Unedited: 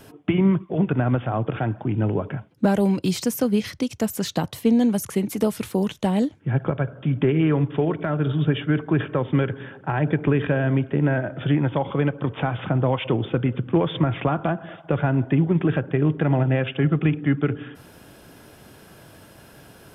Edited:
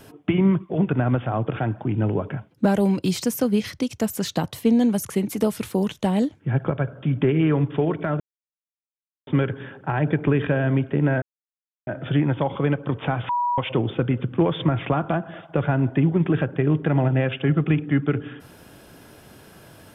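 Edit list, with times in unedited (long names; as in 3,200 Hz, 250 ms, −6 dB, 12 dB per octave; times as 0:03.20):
0:08.20–0:09.27: silence
0:11.22: splice in silence 0.65 s
0:12.64–0:12.93: beep over 969 Hz −19.5 dBFS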